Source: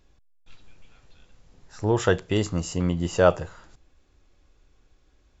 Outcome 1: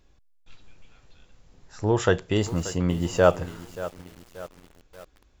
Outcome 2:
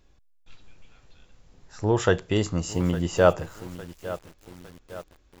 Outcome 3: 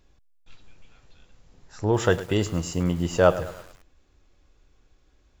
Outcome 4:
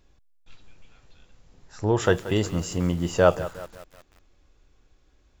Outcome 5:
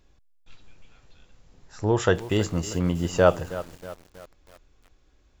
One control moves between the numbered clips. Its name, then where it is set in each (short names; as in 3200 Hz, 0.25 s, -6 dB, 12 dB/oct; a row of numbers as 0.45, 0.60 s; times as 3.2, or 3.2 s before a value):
lo-fi delay, time: 0.582, 0.857, 0.106, 0.18, 0.319 s